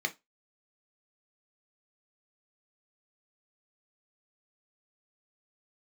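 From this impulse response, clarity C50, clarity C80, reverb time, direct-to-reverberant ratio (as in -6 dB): 20.0 dB, 30.5 dB, 0.20 s, 4.5 dB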